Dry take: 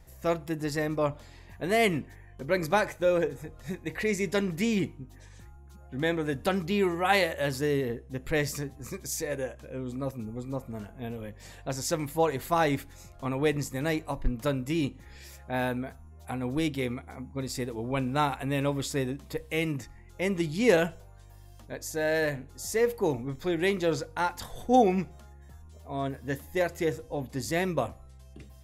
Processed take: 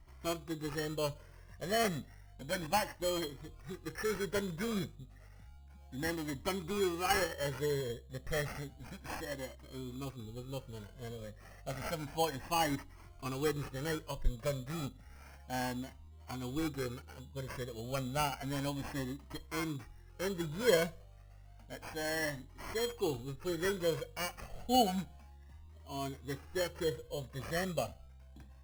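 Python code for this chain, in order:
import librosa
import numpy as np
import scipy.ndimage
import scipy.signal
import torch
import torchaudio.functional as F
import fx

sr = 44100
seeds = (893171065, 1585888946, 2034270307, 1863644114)

y = fx.sample_hold(x, sr, seeds[0], rate_hz=3700.0, jitter_pct=0)
y = fx.comb_cascade(y, sr, direction='rising', hz=0.31)
y = y * librosa.db_to_amplitude(-3.0)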